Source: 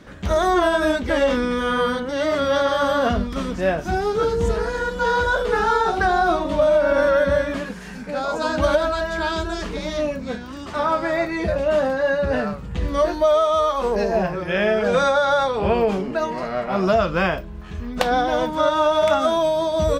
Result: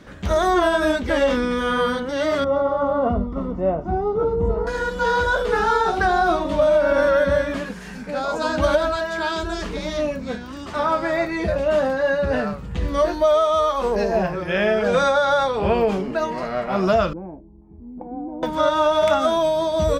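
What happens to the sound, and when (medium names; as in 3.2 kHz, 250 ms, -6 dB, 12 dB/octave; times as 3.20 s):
2.44–4.67 s: Savitzky-Golay filter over 65 samples
8.96–9.43 s: high-pass 210 Hz 6 dB/octave
17.13–18.43 s: cascade formant filter u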